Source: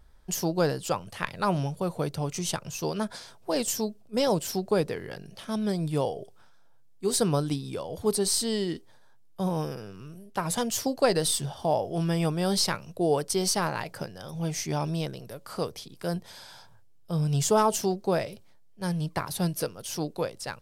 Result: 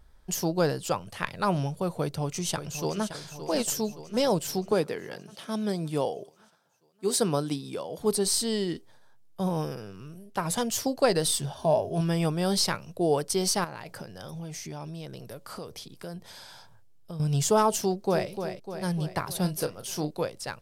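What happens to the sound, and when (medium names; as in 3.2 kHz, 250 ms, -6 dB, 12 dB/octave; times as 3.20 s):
2.00–3.12 s: echo throw 570 ms, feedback 60%, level -10.5 dB
4.72–8.01 s: high-pass 170 Hz
11.54–12.01 s: rippled EQ curve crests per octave 1.5, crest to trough 9 dB
13.64–17.20 s: compression, threshold -35 dBFS
17.80–18.29 s: echo throw 300 ms, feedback 60%, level -8 dB
19.41–20.11 s: doubling 33 ms -10 dB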